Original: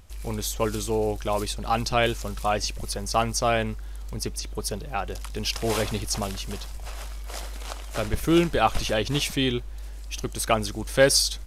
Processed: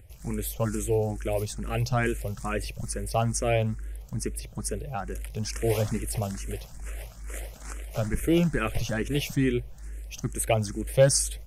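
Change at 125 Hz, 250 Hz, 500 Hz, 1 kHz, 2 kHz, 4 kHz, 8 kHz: +3.0 dB, -1.0 dB, -2.0 dB, -7.5 dB, -5.0 dB, -10.0 dB, -2.0 dB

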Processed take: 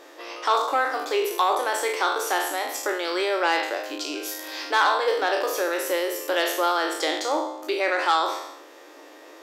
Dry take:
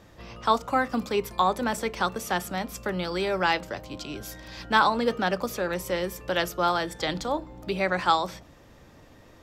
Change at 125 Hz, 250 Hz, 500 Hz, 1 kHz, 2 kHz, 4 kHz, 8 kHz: under -40 dB, -2.5 dB, +3.5 dB, +2.5 dB, +3.5 dB, +4.0 dB, +7.0 dB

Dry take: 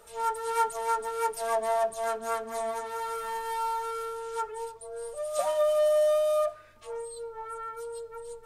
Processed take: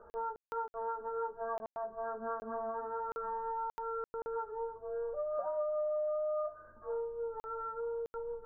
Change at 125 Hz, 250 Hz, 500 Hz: no reading, -1.5 dB, -8.0 dB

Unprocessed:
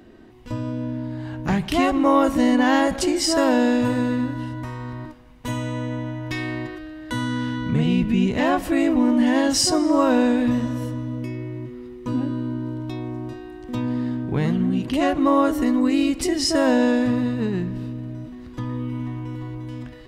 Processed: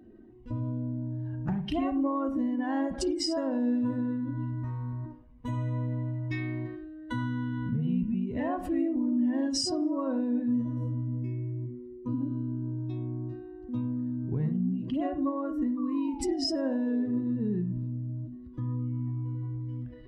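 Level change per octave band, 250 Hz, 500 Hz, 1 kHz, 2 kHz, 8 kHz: -8.5 dB, -12.5 dB, -14.0 dB, -16.5 dB, -13.5 dB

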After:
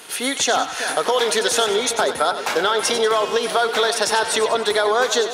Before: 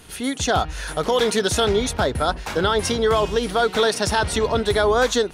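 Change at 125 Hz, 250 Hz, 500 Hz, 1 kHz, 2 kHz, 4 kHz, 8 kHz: -17.0 dB, -5.5 dB, +0.5 dB, +2.5 dB, +3.0 dB, +3.5 dB, +5.0 dB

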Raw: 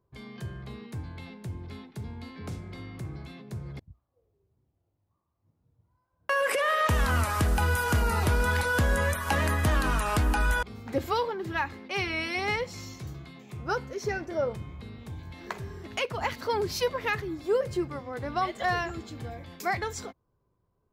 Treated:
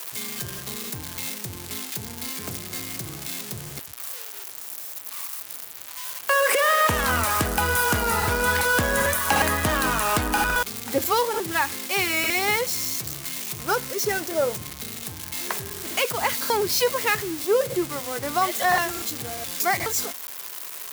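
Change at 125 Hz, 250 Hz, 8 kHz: -3.5 dB, +3.0 dB, +14.0 dB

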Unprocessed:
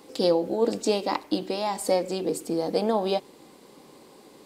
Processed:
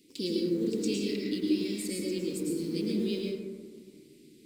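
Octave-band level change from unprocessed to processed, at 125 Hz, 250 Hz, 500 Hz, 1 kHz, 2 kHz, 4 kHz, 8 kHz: -0.5 dB, 0.0 dB, -9.0 dB, under -30 dB, -5.0 dB, -4.0 dB, -3.5 dB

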